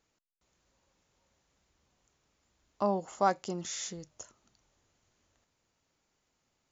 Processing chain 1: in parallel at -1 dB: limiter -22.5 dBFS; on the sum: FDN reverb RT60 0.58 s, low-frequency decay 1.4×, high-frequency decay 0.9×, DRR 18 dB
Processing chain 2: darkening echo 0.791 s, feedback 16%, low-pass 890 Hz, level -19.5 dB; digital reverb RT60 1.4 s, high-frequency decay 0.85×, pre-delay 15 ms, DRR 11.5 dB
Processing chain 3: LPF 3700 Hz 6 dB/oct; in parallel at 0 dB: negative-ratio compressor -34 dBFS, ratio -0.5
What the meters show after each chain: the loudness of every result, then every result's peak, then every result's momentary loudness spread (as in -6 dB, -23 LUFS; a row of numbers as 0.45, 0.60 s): -30.0, -33.0, -31.0 LUFS; -11.0, -13.0, -13.0 dBFS; 17, 18, 17 LU